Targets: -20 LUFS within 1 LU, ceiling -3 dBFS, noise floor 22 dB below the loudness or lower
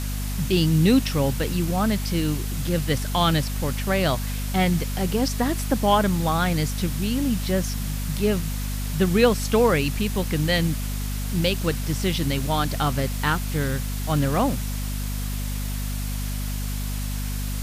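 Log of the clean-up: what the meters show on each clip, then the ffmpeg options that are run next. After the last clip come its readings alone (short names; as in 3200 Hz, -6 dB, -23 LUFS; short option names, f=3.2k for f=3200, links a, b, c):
hum 50 Hz; harmonics up to 250 Hz; hum level -25 dBFS; noise floor -28 dBFS; noise floor target -46 dBFS; loudness -24.0 LUFS; peak -4.5 dBFS; loudness target -20.0 LUFS
-> -af "bandreject=f=50:t=h:w=4,bandreject=f=100:t=h:w=4,bandreject=f=150:t=h:w=4,bandreject=f=200:t=h:w=4,bandreject=f=250:t=h:w=4"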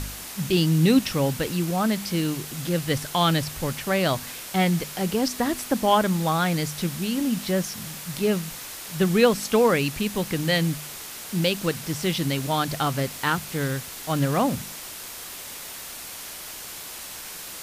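hum none; noise floor -38 dBFS; noise floor target -47 dBFS
-> -af "afftdn=nr=9:nf=-38"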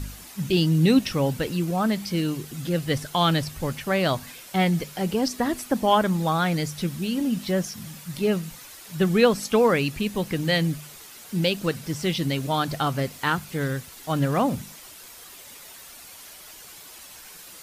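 noise floor -45 dBFS; noise floor target -47 dBFS
-> -af "afftdn=nr=6:nf=-45"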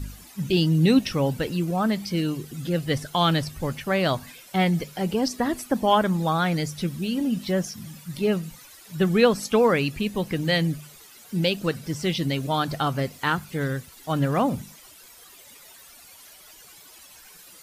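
noise floor -49 dBFS; loudness -24.5 LUFS; peak -5.0 dBFS; loudness target -20.0 LUFS
-> -af "volume=4.5dB,alimiter=limit=-3dB:level=0:latency=1"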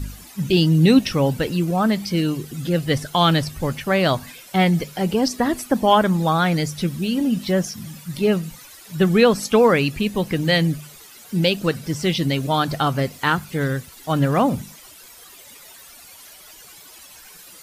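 loudness -20.0 LUFS; peak -3.0 dBFS; noise floor -44 dBFS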